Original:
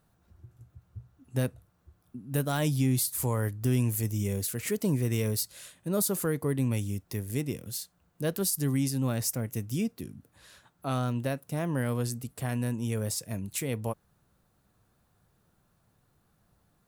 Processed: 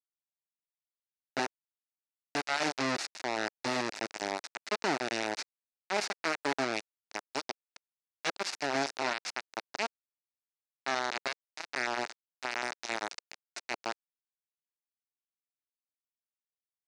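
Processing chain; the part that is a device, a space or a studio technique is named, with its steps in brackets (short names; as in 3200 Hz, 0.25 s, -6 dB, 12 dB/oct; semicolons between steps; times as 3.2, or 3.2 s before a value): 8.91–10.95 HPF 90 Hz 24 dB/oct; hand-held game console (bit-crush 4-bit; speaker cabinet 480–5500 Hz, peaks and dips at 490 Hz -9 dB, 1100 Hz -6 dB, 3200 Hz -9 dB); gain +2 dB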